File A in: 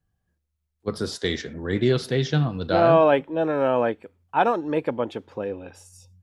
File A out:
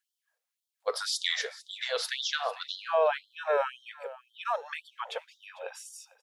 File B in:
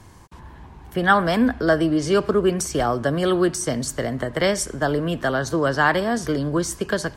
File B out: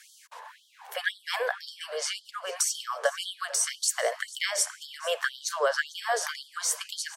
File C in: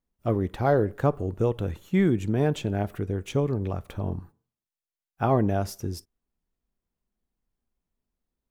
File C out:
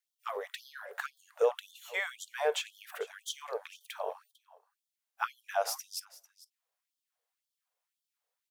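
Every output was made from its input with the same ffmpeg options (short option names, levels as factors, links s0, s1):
-filter_complex "[0:a]acrossover=split=280[s0][s1];[s1]acompressor=threshold=0.0631:ratio=10[s2];[s0][s2]amix=inputs=2:normalize=0,aecho=1:1:448:0.119,afftfilt=real='re*gte(b*sr/1024,420*pow(3100/420,0.5+0.5*sin(2*PI*1.9*pts/sr)))':imag='im*gte(b*sr/1024,420*pow(3100/420,0.5+0.5*sin(2*PI*1.9*pts/sr)))':win_size=1024:overlap=0.75,volume=1.58"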